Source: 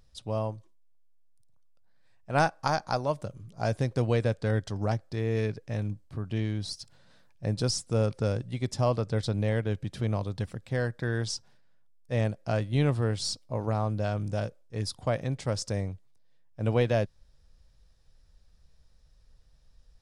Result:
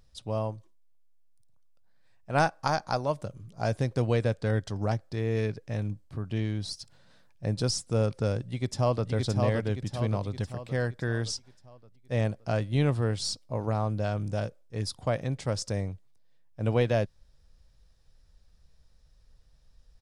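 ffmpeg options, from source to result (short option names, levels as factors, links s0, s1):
-filter_complex "[0:a]asplit=2[s0][s1];[s1]afade=t=in:st=8.4:d=0.01,afade=t=out:st=9.11:d=0.01,aecho=0:1:570|1140|1710|2280|2850|3420|3990:0.668344|0.334172|0.167086|0.083543|0.0417715|0.0208857|0.0104429[s2];[s0][s2]amix=inputs=2:normalize=0"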